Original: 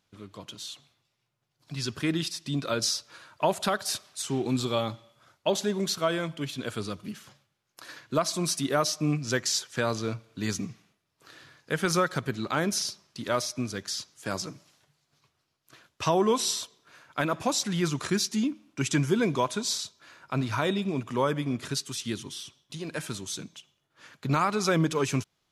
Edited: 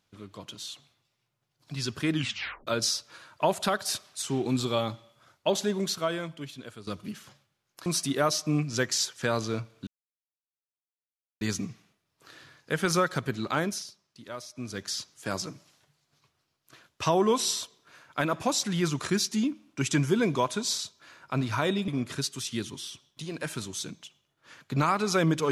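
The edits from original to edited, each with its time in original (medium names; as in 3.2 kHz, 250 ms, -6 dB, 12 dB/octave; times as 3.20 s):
2.13 s: tape stop 0.54 s
5.71–6.87 s: fade out, to -14.5 dB
7.86–8.40 s: delete
10.41 s: insert silence 1.54 s
12.57–13.82 s: dip -12 dB, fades 0.29 s
20.88–21.41 s: delete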